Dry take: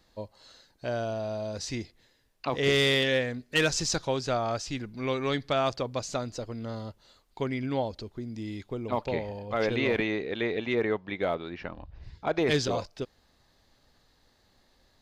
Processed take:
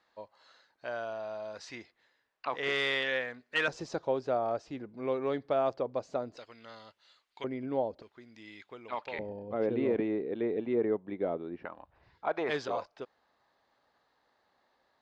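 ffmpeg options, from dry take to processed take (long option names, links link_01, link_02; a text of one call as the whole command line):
ffmpeg -i in.wav -af "asetnsamples=nb_out_samples=441:pad=0,asendcmd='3.68 bandpass f 530;6.37 bandpass f 2300;7.44 bandpass f 510;8.02 bandpass f 1800;9.19 bandpass f 330;11.65 bandpass f 1000',bandpass=frequency=1300:width_type=q:width=1:csg=0" out.wav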